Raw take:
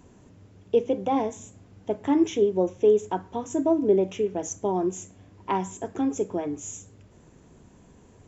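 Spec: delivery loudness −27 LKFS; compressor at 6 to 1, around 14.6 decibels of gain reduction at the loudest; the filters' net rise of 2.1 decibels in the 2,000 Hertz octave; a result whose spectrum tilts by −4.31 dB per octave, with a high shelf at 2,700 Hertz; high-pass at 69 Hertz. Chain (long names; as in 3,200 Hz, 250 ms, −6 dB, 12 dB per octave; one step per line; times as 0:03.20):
high-pass filter 69 Hz
parametric band 2,000 Hz +4 dB
high-shelf EQ 2,700 Hz −3.5 dB
downward compressor 6 to 1, threshold −32 dBFS
level +10 dB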